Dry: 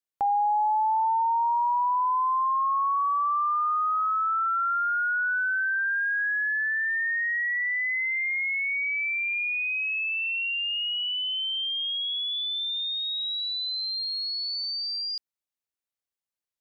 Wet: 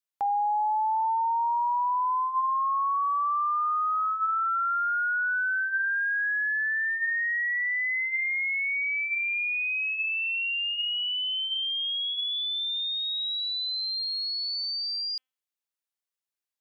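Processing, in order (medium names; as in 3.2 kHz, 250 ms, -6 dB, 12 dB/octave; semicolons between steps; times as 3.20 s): bass shelf 400 Hz -11 dB; de-hum 258.4 Hz, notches 13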